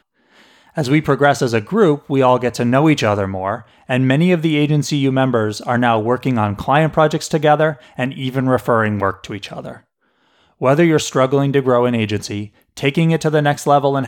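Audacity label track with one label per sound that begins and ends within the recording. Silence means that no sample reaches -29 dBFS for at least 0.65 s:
0.770000	9.770000	sound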